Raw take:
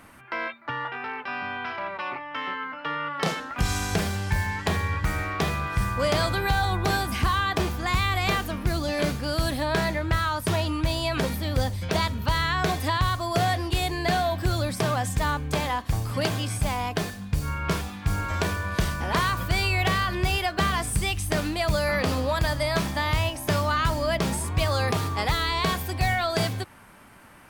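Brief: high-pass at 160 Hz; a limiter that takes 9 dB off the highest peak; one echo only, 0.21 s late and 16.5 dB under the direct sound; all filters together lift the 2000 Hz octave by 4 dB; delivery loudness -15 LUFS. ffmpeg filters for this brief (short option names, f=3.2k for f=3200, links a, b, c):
-af "highpass=160,equalizer=f=2k:t=o:g=5,alimiter=limit=-17.5dB:level=0:latency=1,aecho=1:1:210:0.15,volume=12.5dB"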